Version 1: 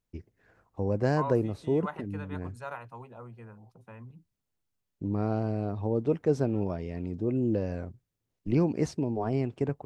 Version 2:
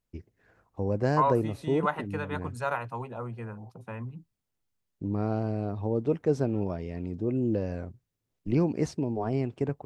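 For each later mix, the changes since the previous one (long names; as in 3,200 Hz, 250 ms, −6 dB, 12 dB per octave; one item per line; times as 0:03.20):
second voice +9.0 dB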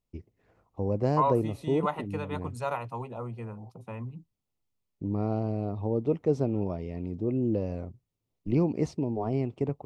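first voice: add high-shelf EQ 5,000 Hz −8 dB
master: add parametric band 1,600 Hz −13 dB 0.32 octaves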